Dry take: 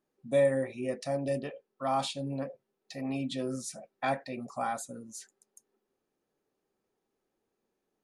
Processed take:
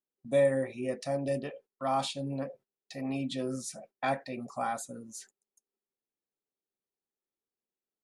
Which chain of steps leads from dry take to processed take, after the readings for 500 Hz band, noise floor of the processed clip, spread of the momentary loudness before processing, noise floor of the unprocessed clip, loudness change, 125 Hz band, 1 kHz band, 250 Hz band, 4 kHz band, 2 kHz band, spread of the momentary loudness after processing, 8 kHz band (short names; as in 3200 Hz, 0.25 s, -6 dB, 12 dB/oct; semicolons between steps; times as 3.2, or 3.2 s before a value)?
0.0 dB, under -85 dBFS, 15 LU, -84 dBFS, 0.0 dB, 0.0 dB, 0.0 dB, 0.0 dB, 0.0 dB, 0.0 dB, 15 LU, 0.0 dB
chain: gate -54 dBFS, range -18 dB